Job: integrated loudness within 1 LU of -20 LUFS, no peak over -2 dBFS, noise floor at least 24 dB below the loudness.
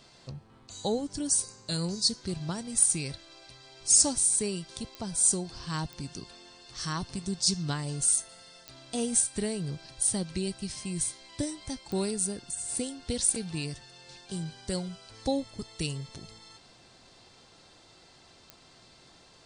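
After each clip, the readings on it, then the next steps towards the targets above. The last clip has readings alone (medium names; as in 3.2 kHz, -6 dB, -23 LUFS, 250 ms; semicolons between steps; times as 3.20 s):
clicks found 5; loudness -29.0 LUFS; peak level -8.5 dBFS; loudness target -20.0 LUFS
-> de-click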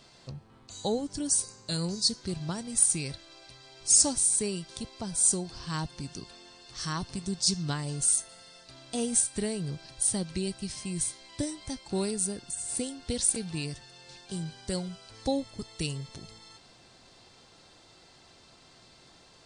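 clicks found 0; loudness -29.0 LUFS; peak level -8.5 dBFS; loudness target -20.0 LUFS
-> trim +9 dB; peak limiter -2 dBFS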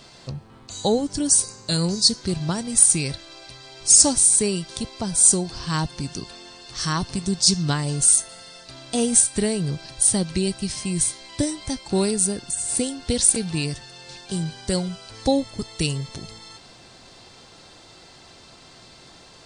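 loudness -20.0 LUFS; peak level -2.0 dBFS; noise floor -48 dBFS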